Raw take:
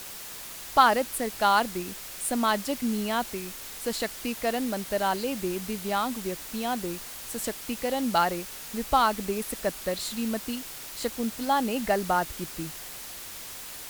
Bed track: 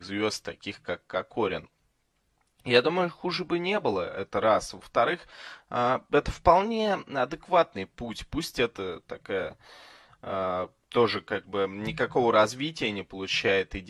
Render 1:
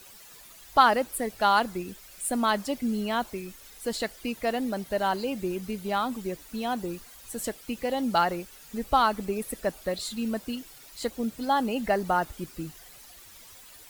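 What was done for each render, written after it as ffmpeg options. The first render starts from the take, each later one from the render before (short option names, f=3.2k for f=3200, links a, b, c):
-af "afftdn=nr=12:nf=-41"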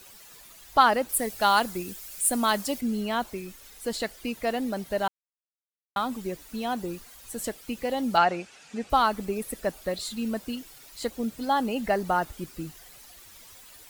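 -filter_complex "[0:a]asettb=1/sr,asplit=3[a][b][c];[a]atrim=end=1.094[d];[b]atrim=start=1.09:end=2.81,asetpts=PTS-STARTPTS,afade=t=in:d=0.004:c=qsin,afade=t=out:st=1.716:d=0.004:c=qsin,highshelf=f=5k:g=9.5[e];[c]atrim=start=2.806[f];[d][e]acrossfade=d=0.004:c1=hsin:c2=qsin[g];[g][f]acrossfade=d=0.004:c1=qsin:c2=hsin,asettb=1/sr,asplit=3[h][i][j];[h]atrim=end=8.174[k];[i]atrim=start=8.17:end=8.9,asetpts=PTS-STARTPTS,afade=t=in:d=0.004:c=qsin,afade=t=out:st=0.726:d=0.004:c=qsin,highpass=120,equalizer=f=730:t=q:w=4:g=6,equalizer=f=1.5k:t=q:w=4:g=4,equalizer=f=2.5k:t=q:w=4:g=7,lowpass=f=7.9k:w=0.5412,lowpass=f=7.9k:w=1.3066[l];[j]atrim=start=8.896[m];[k][l]acrossfade=d=0.004:c1=hsin:c2=qsin[n];[n][m]acrossfade=d=0.004:c1=qsin:c2=hsin,asplit=3[o][p][q];[o]atrim=end=5.08,asetpts=PTS-STARTPTS,afade=t=out:st=5.076:d=0.004:c=hsin[r];[p]atrim=start=5.08:end=5.96,asetpts=PTS-STARTPTS,volume=0[s];[q]atrim=start=5.96,asetpts=PTS-STARTPTS,afade=t=in:d=0.004:c=hsin[t];[r][s][t]concat=n=3:v=0:a=1"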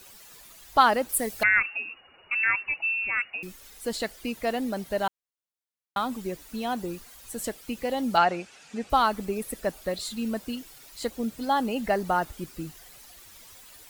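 -filter_complex "[0:a]asettb=1/sr,asplit=3[a][b][c];[a]atrim=end=1.434[d];[b]atrim=start=1.43:end=3.43,asetpts=PTS-STARTPTS,afade=t=in:d=0.004:c=qsin,afade=t=out:st=1.996:d=0.004:c=qsin,lowpass=f=2.5k:t=q:w=0.5098,lowpass=f=2.5k:t=q:w=0.6013,lowpass=f=2.5k:t=q:w=0.9,lowpass=f=2.5k:t=q:w=2.563,afreqshift=-2900[e];[c]atrim=start=3.426[f];[d][e]acrossfade=d=0.004:c1=hsin:c2=qsin[g];[g][f]acrossfade=d=0.004:c1=qsin:c2=hsin"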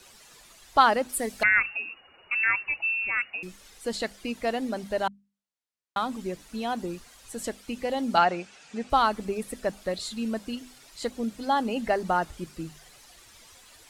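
-af "lowpass=9.1k,bandreject=f=50:t=h:w=6,bandreject=f=100:t=h:w=6,bandreject=f=150:t=h:w=6,bandreject=f=200:t=h:w=6,bandreject=f=250:t=h:w=6"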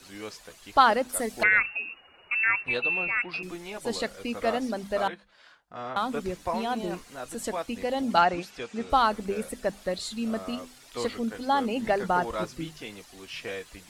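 -filter_complex "[1:a]volume=-11.5dB[a];[0:a][a]amix=inputs=2:normalize=0"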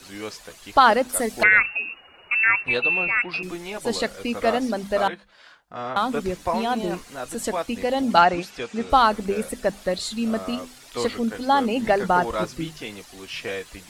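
-af "volume=5.5dB,alimiter=limit=-3dB:level=0:latency=1"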